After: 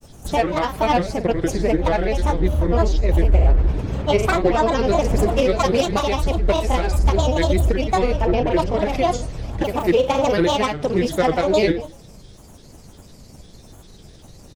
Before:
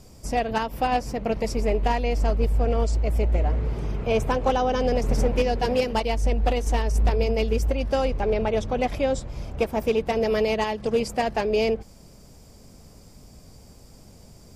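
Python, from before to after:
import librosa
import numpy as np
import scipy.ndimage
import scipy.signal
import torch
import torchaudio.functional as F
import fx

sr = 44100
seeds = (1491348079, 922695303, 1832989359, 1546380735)

y = fx.room_flutter(x, sr, wall_m=8.9, rt60_s=0.41)
y = fx.granulator(y, sr, seeds[0], grain_ms=100.0, per_s=20.0, spray_ms=27.0, spread_st=7)
y = F.gain(torch.from_numpy(y), 5.5).numpy()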